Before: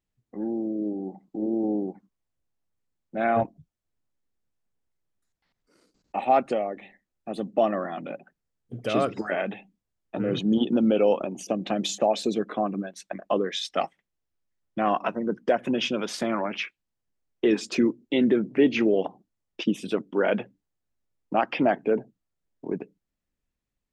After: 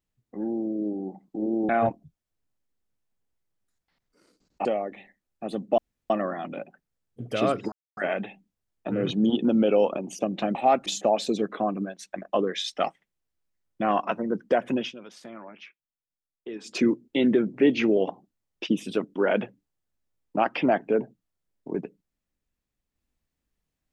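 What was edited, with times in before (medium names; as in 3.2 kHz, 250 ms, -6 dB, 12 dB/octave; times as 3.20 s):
1.69–3.23 s: delete
6.19–6.50 s: move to 11.83 s
7.63 s: insert room tone 0.32 s
9.25 s: insert silence 0.25 s
15.72–17.74 s: dip -15.5 dB, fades 0.17 s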